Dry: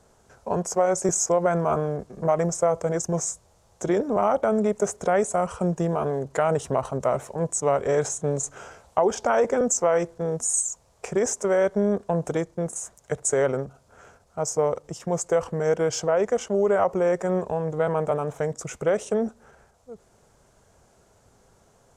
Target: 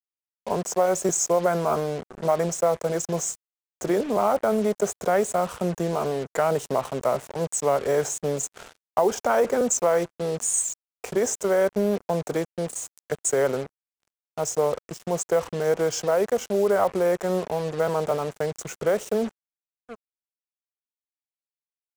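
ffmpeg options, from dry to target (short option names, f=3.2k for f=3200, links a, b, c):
-filter_complex "[0:a]acrossover=split=160|1300|3900[a][b][c][d];[a]acompressor=threshold=-45dB:ratio=6[e];[e][b][c][d]amix=inputs=4:normalize=0,acrusher=bits=5:mix=0:aa=0.5"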